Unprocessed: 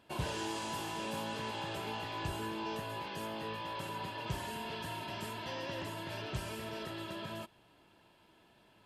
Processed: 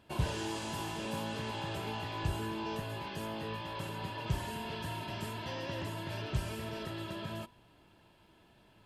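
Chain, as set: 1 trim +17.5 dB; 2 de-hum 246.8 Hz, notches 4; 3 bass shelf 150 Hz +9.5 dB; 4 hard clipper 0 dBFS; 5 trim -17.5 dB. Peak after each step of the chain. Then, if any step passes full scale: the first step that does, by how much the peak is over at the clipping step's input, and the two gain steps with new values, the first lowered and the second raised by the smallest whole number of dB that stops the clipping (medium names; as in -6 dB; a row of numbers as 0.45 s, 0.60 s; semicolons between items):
-6.0 dBFS, -6.5 dBFS, -3.0 dBFS, -3.0 dBFS, -20.5 dBFS; nothing clips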